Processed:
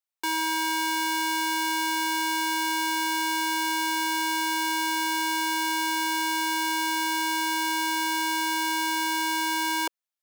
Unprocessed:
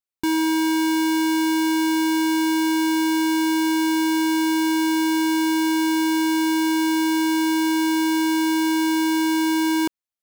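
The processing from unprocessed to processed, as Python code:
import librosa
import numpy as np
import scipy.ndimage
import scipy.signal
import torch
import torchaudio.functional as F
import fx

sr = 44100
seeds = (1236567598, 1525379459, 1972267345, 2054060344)

y = scipy.signal.sosfilt(scipy.signal.butter(4, 490.0, 'highpass', fs=sr, output='sos'), x)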